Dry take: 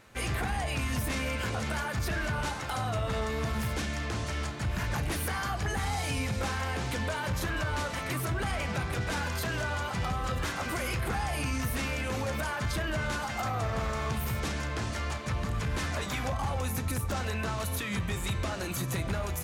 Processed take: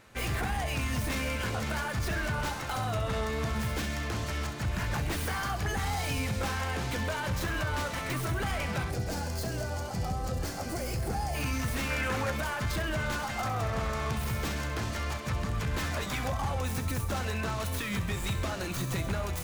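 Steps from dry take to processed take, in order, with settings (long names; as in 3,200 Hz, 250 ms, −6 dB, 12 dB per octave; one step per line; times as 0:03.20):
stylus tracing distortion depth 0.088 ms
0:08.90–0:11.35: gain on a spectral selection 870–4,100 Hz −9 dB
0:11.90–0:12.31: parametric band 1,500 Hz +7.5 dB 1.1 octaves
delay with a high-pass on its return 66 ms, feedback 66%, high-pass 4,800 Hz, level −8.5 dB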